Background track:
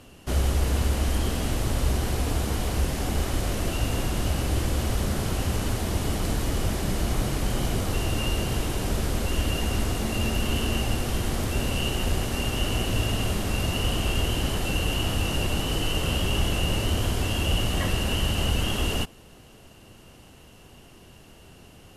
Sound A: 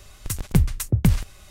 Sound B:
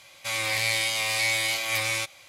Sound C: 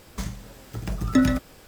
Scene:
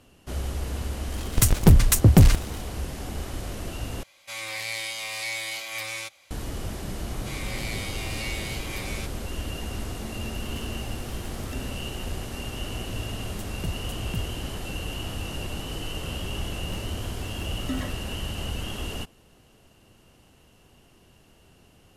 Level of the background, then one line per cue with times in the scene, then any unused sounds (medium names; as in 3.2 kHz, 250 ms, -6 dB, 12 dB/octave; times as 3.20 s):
background track -7 dB
1.12 s: add A -1 dB + waveshaping leveller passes 3
4.03 s: replace with B -6.5 dB + peaking EQ 130 Hz -14 dB 0.25 oct
7.01 s: add B -10.5 dB
10.38 s: add C -9.5 dB + compression, threshold -30 dBFS
13.09 s: add A -16 dB
16.54 s: add C -13.5 dB